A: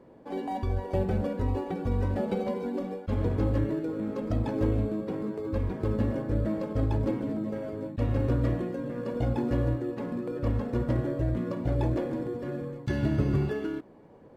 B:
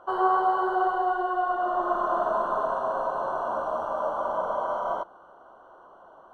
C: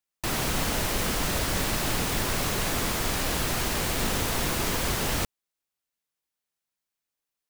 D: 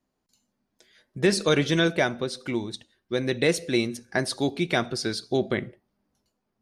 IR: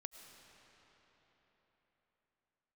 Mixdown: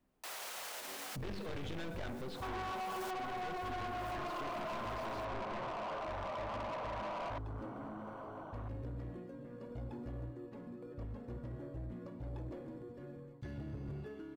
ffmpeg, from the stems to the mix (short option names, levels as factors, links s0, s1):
-filter_complex "[0:a]adelay=550,volume=0.168[s0];[1:a]adelay=2350,volume=1.33[s1];[2:a]highpass=f=530:w=0.5412,highpass=f=530:w=1.3066,volume=0.562[s2];[3:a]aeval=exprs='(tanh(35.5*val(0)+0.45)-tanh(0.45))/35.5':c=same,lowpass=f=3400:w=0.5412,lowpass=f=3400:w=1.3066,volume=1.26,asplit=2[s3][s4];[s4]apad=whole_len=330714[s5];[s2][s5]sidechaincompress=threshold=0.00126:ratio=12:attack=6.9:release=255[s6];[s1][s3]amix=inputs=2:normalize=0,acompressor=threshold=0.0112:ratio=2,volume=1[s7];[s0][s6]amix=inputs=2:normalize=0,alimiter=level_in=2.99:limit=0.0631:level=0:latency=1:release=117,volume=0.335,volume=1[s8];[s7][s8]amix=inputs=2:normalize=0,lowshelf=f=92:g=6.5,asoftclip=type=tanh:threshold=0.0126"